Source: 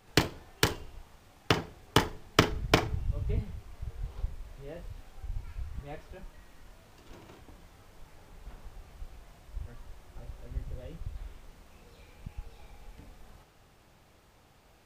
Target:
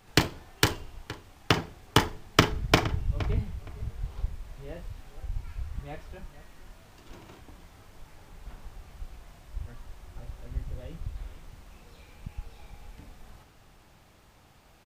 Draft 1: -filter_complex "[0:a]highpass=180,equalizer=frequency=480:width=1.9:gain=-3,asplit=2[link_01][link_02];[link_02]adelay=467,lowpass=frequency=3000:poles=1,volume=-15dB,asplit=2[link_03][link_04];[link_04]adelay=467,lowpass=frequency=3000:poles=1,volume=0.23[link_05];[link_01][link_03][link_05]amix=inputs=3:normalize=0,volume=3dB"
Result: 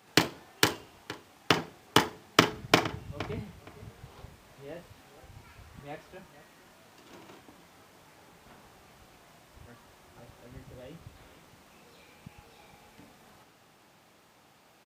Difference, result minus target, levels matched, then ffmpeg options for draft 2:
250 Hz band −3.0 dB
-filter_complex "[0:a]equalizer=frequency=480:width=1.9:gain=-3,asplit=2[link_01][link_02];[link_02]adelay=467,lowpass=frequency=3000:poles=1,volume=-15dB,asplit=2[link_03][link_04];[link_04]adelay=467,lowpass=frequency=3000:poles=1,volume=0.23[link_05];[link_01][link_03][link_05]amix=inputs=3:normalize=0,volume=3dB"

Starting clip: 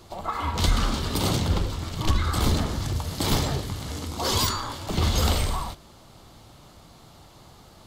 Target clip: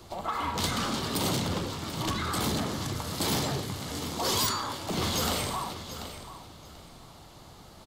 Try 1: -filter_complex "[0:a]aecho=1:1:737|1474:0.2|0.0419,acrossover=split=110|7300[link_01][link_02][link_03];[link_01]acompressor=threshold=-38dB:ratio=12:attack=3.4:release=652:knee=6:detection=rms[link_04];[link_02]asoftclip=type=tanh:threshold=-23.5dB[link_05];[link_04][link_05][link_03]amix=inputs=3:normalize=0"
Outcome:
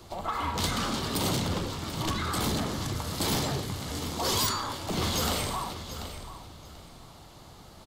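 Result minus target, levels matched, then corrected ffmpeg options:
downward compressor: peak gain reduction −8.5 dB
-filter_complex "[0:a]aecho=1:1:737|1474:0.2|0.0419,acrossover=split=110|7300[link_01][link_02][link_03];[link_01]acompressor=threshold=-47.5dB:ratio=12:attack=3.4:release=652:knee=6:detection=rms[link_04];[link_02]asoftclip=type=tanh:threshold=-23.5dB[link_05];[link_04][link_05][link_03]amix=inputs=3:normalize=0"

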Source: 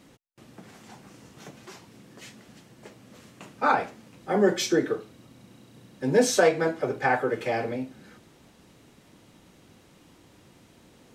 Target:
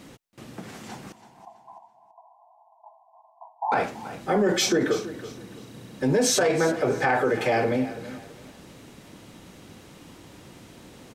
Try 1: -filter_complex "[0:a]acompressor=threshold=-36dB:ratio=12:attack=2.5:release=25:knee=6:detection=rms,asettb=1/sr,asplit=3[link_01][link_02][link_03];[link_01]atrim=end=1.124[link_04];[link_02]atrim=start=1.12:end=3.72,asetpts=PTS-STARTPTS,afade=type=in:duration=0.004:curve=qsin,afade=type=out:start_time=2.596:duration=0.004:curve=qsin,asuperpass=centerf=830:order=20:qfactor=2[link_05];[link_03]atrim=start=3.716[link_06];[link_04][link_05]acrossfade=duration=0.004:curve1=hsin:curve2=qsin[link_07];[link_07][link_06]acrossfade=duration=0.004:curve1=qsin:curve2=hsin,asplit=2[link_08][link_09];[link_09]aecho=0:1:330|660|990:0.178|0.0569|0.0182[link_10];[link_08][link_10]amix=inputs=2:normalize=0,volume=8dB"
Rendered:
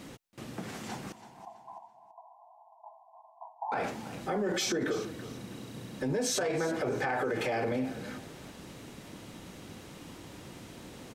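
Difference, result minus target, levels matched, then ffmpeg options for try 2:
downward compressor: peak gain reduction +9.5 dB
-filter_complex "[0:a]acompressor=threshold=-25.5dB:ratio=12:attack=2.5:release=25:knee=6:detection=rms,asettb=1/sr,asplit=3[link_01][link_02][link_03];[link_01]atrim=end=1.124[link_04];[link_02]atrim=start=1.12:end=3.72,asetpts=PTS-STARTPTS,afade=type=in:duration=0.004:curve=qsin,afade=type=out:start_time=2.596:duration=0.004:curve=qsin,asuperpass=centerf=830:order=20:qfactor=2[link_05];[link_03]atrim=start=3.716[link_06];[link_04][link_05]acrossfade=duration=0.004:curve1=hsin:curve2=qsin[link_07];[link_07][link_06]acrossfade=duration=0.004:curve1=qsin:curve2=hsin,asplit=2[link_08][link_09];[link_09]aecho=0:1:330|660|990:0.178|0.0569|0.0182[link_10];[link_08][link_10]amix=inputs=2:normalize=0,volume=8dB"

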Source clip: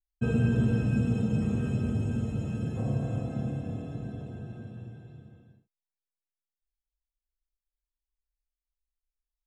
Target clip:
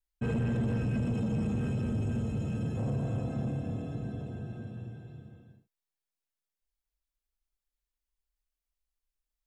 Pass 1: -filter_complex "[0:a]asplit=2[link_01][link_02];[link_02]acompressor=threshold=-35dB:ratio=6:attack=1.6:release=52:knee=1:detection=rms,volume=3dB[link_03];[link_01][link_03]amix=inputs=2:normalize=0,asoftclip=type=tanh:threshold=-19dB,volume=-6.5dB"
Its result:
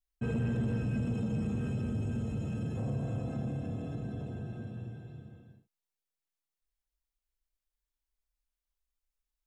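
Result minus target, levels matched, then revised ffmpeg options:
downward compressor: peak gain reduction +8.5 dB
-filter_complex "[0:a]asplit=2[link_01][link_02];[link_02]acompressor=threshold=-24.5dB:ratio=6:attack=1.6:release=52:knee=1:detection=rms,volume=3dB[link_03];[link_01][link_03]amix=inputs=2:normalize=0,asoftclip=type=tanh:threshold=-19dB,volume=-6.5dB"

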